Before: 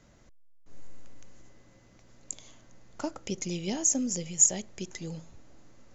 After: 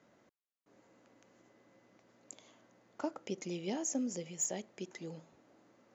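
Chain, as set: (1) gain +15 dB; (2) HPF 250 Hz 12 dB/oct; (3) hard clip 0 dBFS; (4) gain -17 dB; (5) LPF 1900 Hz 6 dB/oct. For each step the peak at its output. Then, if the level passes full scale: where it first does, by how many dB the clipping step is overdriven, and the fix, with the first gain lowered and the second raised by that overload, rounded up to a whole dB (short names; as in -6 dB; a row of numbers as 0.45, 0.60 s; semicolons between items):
+7.5, +7.5, 0.0, -17.0, -22.5 dBFS; step 1, 7.5 dB; step 1 +7 dB, step 4 -9 dB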